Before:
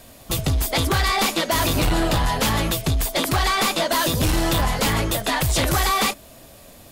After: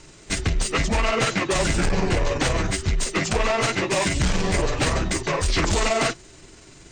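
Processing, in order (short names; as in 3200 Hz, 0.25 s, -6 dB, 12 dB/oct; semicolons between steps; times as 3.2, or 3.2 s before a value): delay-line pitch shifter -9.5 st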